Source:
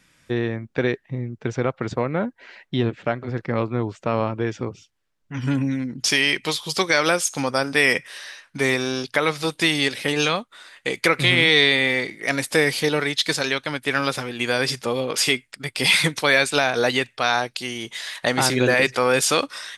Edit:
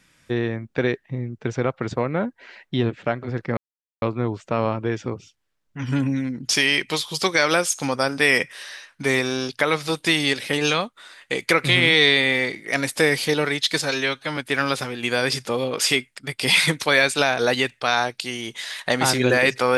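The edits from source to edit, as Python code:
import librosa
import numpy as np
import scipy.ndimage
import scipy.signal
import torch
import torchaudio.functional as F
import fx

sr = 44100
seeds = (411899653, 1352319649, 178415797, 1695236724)

y = fx.edit(x, sr, fx.insert_silence(at_s=3.57, length_s=0.45),
    fx.stretch_span(start_s=13.37, length_s=0.37, factor=1.5), tone=tone)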